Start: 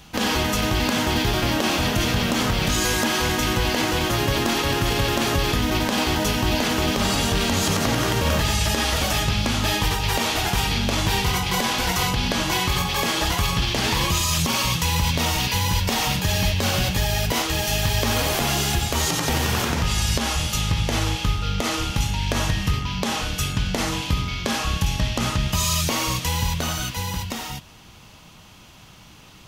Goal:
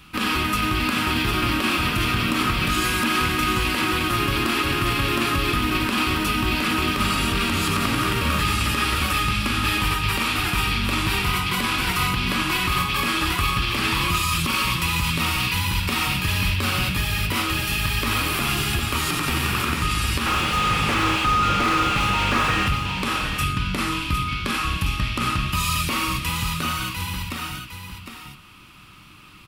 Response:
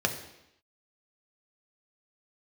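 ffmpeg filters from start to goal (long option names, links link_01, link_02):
-filter_complex "[0:a]equalizer=frequency=315:width_type=o:width=0.33:gain=4,equalizer=frequency=500:width_type=o:width=0.33:gain=-9,equalizer=frequency=800:width_type=o:width=0.33:gain=-8,equalizer=frequency=1250:width_type=o:width=0.33:gain=10,equalizer=frequency=2500:width_type=o:width=0.33:gain=8,equalizer=frequency=6300:width_type=o:width=0.33:gain=-10,equalizer=frequency=10000:width_type=o:width=0.33:gain=4,asettb=1/sr,asplit=3[link_01][link_02][link_03];[link_01]atrim=end=20.264[link_04];[link_02]atrim=start=20.26:end=22.68,asetpts=PTS-STARTPTS,afade=type=in:duration=0.004:curve=qsin,afade=type=out:start_time=2.416:duration=0.004:curve=qsin,asplit=2[link_05][link_06];[link_06]highpass=frequency=720:poles=1,volume=34dB,asoftclip=type=tanh:threshold=-7.5dB[link_07];[link_05][link_07]amix=inputs=2:normalize=0,lowpass=frequency=1100:poles=1,volume=-6dB[link_08];[link_03]atrim=start=22.676[link_09];[link_04][link_08]acrossfade=duration=0.004:curve1=hsin:curve2=qsin[link_10];[link_10][link_09]acrossfade=duration=0.004:curve1=qsin:curve2=hsin,asuperstop=centerf=650:order=4:qfactor=7.6,aecho=1:1:757:0.422,volume=-2.5dB"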